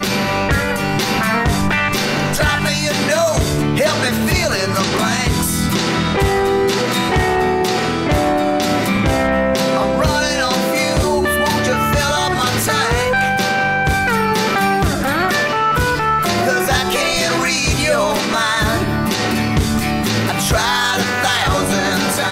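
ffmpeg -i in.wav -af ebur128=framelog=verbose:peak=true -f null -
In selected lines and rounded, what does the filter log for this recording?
Integrated loudness:
  I:         -15.8 LUFS
  Threshold: -25.8 LUFS
Loudness range:
  LRA:         0.7 LU
  Threshold: -35.8 LUFS
  LRA low:   -16.1 LUFS
  LRA high:  -15.4 LUFS
True peak:
  Peak:       -6.4 dBFS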